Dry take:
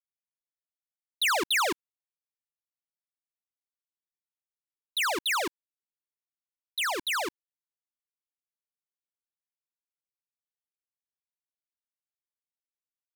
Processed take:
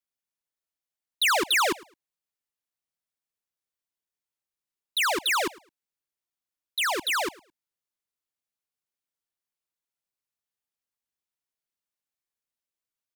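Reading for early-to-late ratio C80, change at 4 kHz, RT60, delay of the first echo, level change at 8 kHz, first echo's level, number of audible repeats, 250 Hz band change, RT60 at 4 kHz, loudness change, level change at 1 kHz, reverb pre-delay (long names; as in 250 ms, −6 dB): no reverb audible, +3.0 dB, no reverb audible, 107 ms, +3.0 dB, −22.0 dB, 1, +3.0 dB, no reverb audible, +3.0 dB, +3.0 dB, no reverb audible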